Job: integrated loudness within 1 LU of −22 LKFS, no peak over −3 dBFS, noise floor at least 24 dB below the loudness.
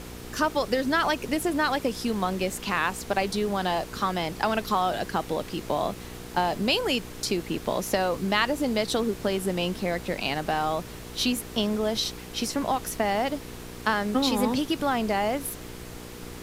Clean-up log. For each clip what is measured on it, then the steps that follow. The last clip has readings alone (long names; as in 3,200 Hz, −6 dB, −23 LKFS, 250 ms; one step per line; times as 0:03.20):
mains hum 60 Hz; hum harmonics up to 480 Hz; level of the hum −41 dBFS; background noise floor −41 dBFS; target noise floor −51 dBFS; integrated loudness −27.0 LKFS; sample peak −7.0 dBFS; target loudness −22.0 LKFS
→ hum removal 60 Hz, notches 8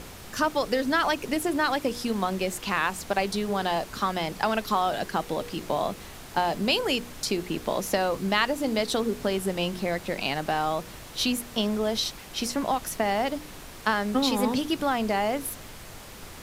mains hum none found; background noise floor −44 dBFS; target noise floor −52 dBFS
→ noise reduction from a noise print 8 dB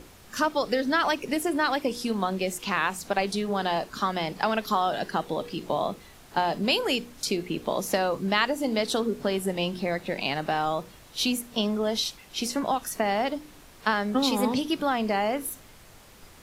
background noise floor −51 dBFS; target noise floor −52 dBFS
→ noise reduction from a noise print 6 dB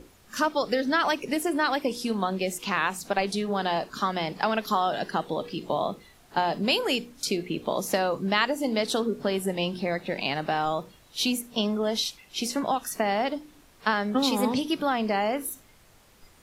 background noise floor −57 dBFS; integrated loudness −27.5 LKFS; sample peak −7.5 dBFS; target loudness −22.0 LKFS
→ level +5.5 dB
brickwall limiter −3 dBFS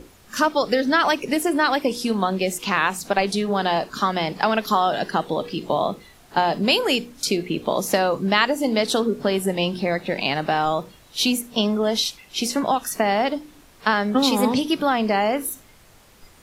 integrated loudness −22.0 LKFS; sample peak −3.0 dBFS; background noise floor −51 dBFS